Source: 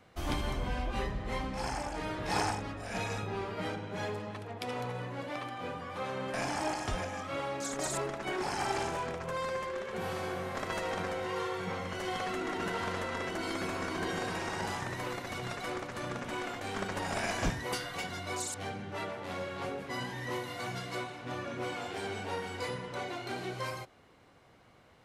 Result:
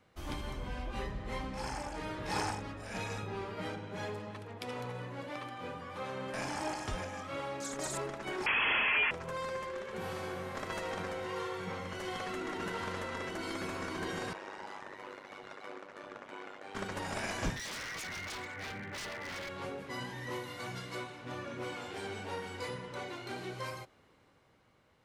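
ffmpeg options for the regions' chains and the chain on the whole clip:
-filter_complex "[0:a]asettb=1/sr,asplit=3[a][b][c];[a]atrim=end=8.464[d];[b]atrim=start=8.46:end=9.11,asetpts=PTS-STARTPTS,afade=t=in:d=0.004:c=qsin,afade=t=out:st=0.646:d=0.004:c=qsin,highpass=f=800:w=0.5412,highpass=f=800:w=1.3066,aeval=exprs='0.0794*sin(PI/2*5.01*val(0)/0.0794)':c=same,lowpass=f=2.9k:t=q:w=0.5098,lowpass=f=2.9k:t=q:w=0.6013,lowpass=f=2.9k:t=q:w=0.9,lowpass=f=2.9k:t=q:w=2.563,afreqshift=-3400[e];[c]atrim=start=9.106[f];[d][e]acrossfade=d=0.004:c1=hsin:c2=qsin[g];[g][f]acrossfade=d=0.004:c1=qsin:c2=hsin,asettb=1/sr,asplit=3[h][i][j];[h]atrim=end=14.334[k];[i]atrim=start=14.33:end=16.75,asetpts=PTS-STARTPTS,afade=t=in:d=0.004:c=qsin,afade=t=out:st=2.416:d=0.004:c=qsin,highpass=360,aemphasis=mode=reproduction:type=75kf,tremolo=f=99:d=0.824[l];[j]atrim=start=16.746[m];[k][l]acrossfade=d=0.004:c1=hsin:c2=qsin[n];[n][m]acrossfade=d=0.004:c1=qsin:c2=hsin,asettb=1/sr,asplit=3[o][p][q];[o]atrim=end=17.564[r];[p]atrim=start=17.56:end=19.49,asetpts=PTS-STARTPTS,afade=t=in:d=0.004:c=qsin,afade=t=out:st=1.926:d=0.004:c=qsin,lowpass=f=2k:t=q:w=5,aeval=exprs='0.0211*(abs(mod(val(0)/0.0211+3,4)-2)-1)':c=same[s];[q]atrim=start=19.486[t];[r][s]acrossfade=d=0.004:c1=hsin:c2=qsin[u];[u][t]acrossfade=d=0.004:c1=qsin:c2=hsin,bandreject=f=710:w=12,dynaudnorm=f=140:g=13:m=3.5dB,volume=-6.5dB"

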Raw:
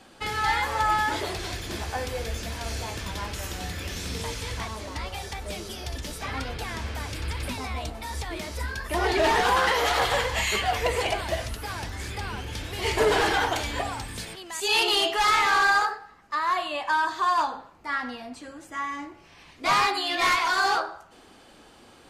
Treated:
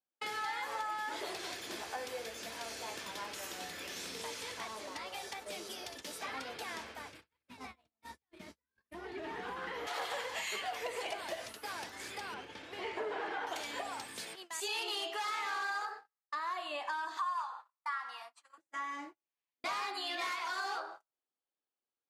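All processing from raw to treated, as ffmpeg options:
-filter_complex "[0:a]asettb=1/sr,asplit=3[a][b][c];[a]atrim=end=6.824[d];[b]atrim=start=6.82:end=9.87,asetpts=PTS-STARTPTS,afade=t=in:d=0.004:c=qsin,afade=t=out:st=3.046:d=0.004:c=qsin,acrossover=split=3000[e][f];[f]acompressor=threshold=-45dB:ratio=4:attack=1:release=60[g];[e][g]amix=inputs=2:normalize=0,asubboost=boost=10.5:cutoff=230[h];[c]atrim=start=9.866[i];[d][h]acrossfade=d=0.004:c1=hsin:c2=qsin[j];[j][i]acrossfade=d=0.004:c1=qsin:c2=hsin,asettb=1/sr,asplit=3[k][l][m];[k]atrim=end=12.344[n];[l]atrim=start=12.34:end=13.47,asetpts=PTS-STARTPTS,afade=t=in:d=0.004:c=qsin,afade=t=out:st=1.126:d=0.004:c=qsin,acrossover=split=2900[o][p];[p]acompressor=threshold=-41dB:ratio=4:attack=1:release=60[q];[o][q]amix=inputs=2:normalize=0,aemphasis=mode=reproduction:type=50fm[r];[m]atrim=start=13.466[s];[n][r]acrossfade=d=0.004:c1=hsin:c2=qsin[t];[t][s]acrossfade=d=0.004:c1=qsin:c2=hsin,asettb=1/sr,asplit=3[u][v][w];[u]atrim=end=17.174[x];[v]atrim=start=17.17:end=18.58,asetpts=PTS-STARTPTS,afade=t=in:d=0.004:c=qsin,afade=t=out:st=1.406:d=0.004:c=qsin,highpass=f=1.1k:t=q:w=3.1,equalizer=f=9.6k:w=1.3:g=6,bandreject=f=1.6k:w=26[y];[w]atrim=start=18.576[z];[x][y]acrossfade=d=0.004:c1=hsin:c2=qsin[aa];[aa][z]acrossfade=d=0.004:c1=qsin:c2=hsin,acompressor=threshold=-29dB:ratio=6,highpass=320,agate=range=-41dB:threshold=-41dB:ratio=16:detection=peak,volume=-6dB"

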